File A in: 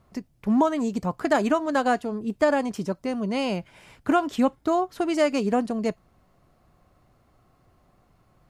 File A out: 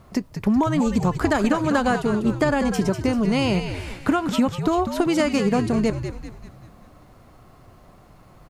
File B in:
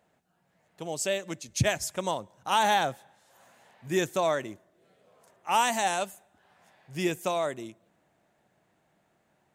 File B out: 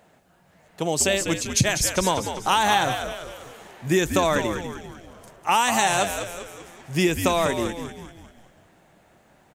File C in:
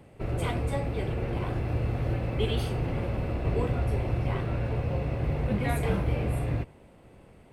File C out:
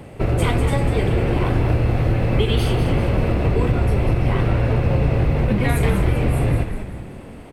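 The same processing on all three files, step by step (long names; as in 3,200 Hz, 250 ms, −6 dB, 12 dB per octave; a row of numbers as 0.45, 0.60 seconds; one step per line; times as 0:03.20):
dynamic equaliser 640 Hz, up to −5 dB, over −37 dBFS, Q 1.9
downward compressor 5 to 1, threshold −29 dBFS
echo with shifted repeats 196 ms, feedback 48%, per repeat −87 Hz, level −8 dB
normalise the peak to −6 dBFS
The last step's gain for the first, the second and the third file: +11.0, +12.0, +14.0 decibels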